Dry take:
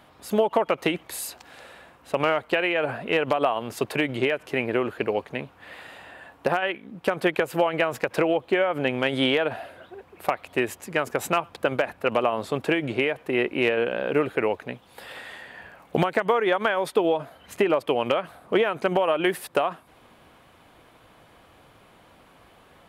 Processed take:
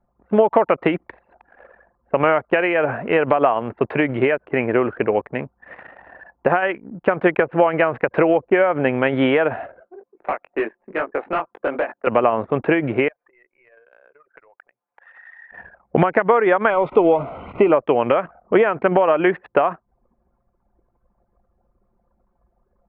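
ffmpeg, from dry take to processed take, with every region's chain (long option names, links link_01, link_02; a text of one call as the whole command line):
ffmpeg -i in.wav -filter_complex "[0:a]asettb=1/sr,asplit=3[link_01][link_02][link_03];[link_01]atrim=end=9.804[link_04];[link_02]atrim=start=9.8:end=12.07,asetpts=PTS-STARTPTS,afade=type=in:duration=0.004:curve=qsin,afade=type=out:start_time=2.266:duration=0.004:curve=qsin,highpass=frequency=240:width=0.5412,highpass=frequency=240:width=1.3066,flanger=delay=18:depth=4.2:speed=2.4,asoftclip=type=hard:threshold=-21.5dB[link_05];[link_03]atrim=start=12.066[link_06];[link_04][link_05]acrossfade=duration=0.004:curve1=hsin:curve2=qsin[link_07];[link_07][link_06]acrossfade=duration=0.004:curve1=qsin:curve2=hsin,asettb=1/sr,asplit=3[link_08][link_09][link_10];[link_08]atrim=end=13.084[link_11];[link_09]atrim=start=13.08:end=15.52,asetpts=PTS-STARTPTS,afade=type=in:duration=0.004:curve=qsin,afade=type=out:start_time=2.436:duration=0.004:curve=qsin,acompressor=threshold=-39dB:ratio=5:attack=3.2:release=140:knee=1:detection=peak,highpass=870[link_12];[link_10]atrim=start=15.516[link_13];[link_11][link_12]acrossfade=duration=0.004:curve1=hsin:curve2=qsin[link_14];[link_14][link_13]acrossfade=duration=0.004:curve1=qsin:curve2=hsin,asettb=1/sr,asplit=3[link_15][link_16][link_17];[link_15]atrim=end=16.704[link_18];[link_16]atrim=start=16.7:end=17.72,asetpts=PTS-STARTPTS,afade=type=in:duration=0.004:curve=qsin,afade=type=out:start_time=1.016:duration=0.004:curve=qsin,aeval=exprs='val(0)+0.5*0.0178*sgn(val(0))':channel_layout=same,asuperstop=centerf=1700:order=4:qfactor=2.5[link_19];[link_17]atrim=start=17.716[link_20];[link_18][link_19]acrossfade=duration=0.004:curve1=hsin:curve2=qsin[link_21];[link_21][link_20]acrossfade=duration=0.004:curve1=qsin:curve2=hsin,lowpass=frequency=2200:width=0.5412,lowpass=frequency=2200:width=1.3066,anlmdn=0.158,volume=6.5dB" out.wav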